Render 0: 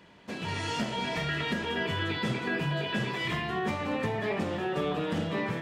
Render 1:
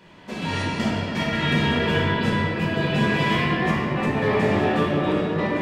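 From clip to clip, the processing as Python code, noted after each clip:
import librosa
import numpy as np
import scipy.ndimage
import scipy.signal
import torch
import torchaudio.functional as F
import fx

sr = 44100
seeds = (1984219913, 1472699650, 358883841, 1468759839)

y = fx.step_gate(x, sr, bpm=170, pattern='xxxxxxx..x...x.x', floor_db=-12.0, edge_ms=4.5)
y = fx.room_shoebox(y, sr, seeds[0], volume_m3=210.0, walls='hard', distance_m=1.1)
y = F.gain(torch.from_numpy(y), 2.5).numpy()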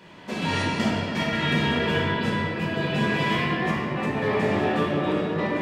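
y = fx.low_shelf(x, sr, hz=61.0, db=-10.0)
y = fx.rider(y, sr, range_db=5, speed_s=2.0)
y = F.gain(torch.from_numpy(y), -2.0).numpy()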